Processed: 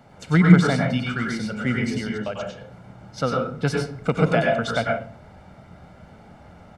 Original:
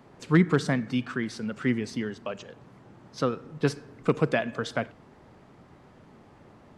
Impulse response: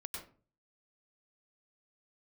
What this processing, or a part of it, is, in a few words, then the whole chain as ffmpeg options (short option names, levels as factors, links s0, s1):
microphone above a desk: -filter_complex "[0:a]aecho=1:1:1.4:0.58[s0];[1:a]atrim=start_sample=2205[s1];[s0][s1]afir=irnorm=-1:irlink=0,volume=2.37"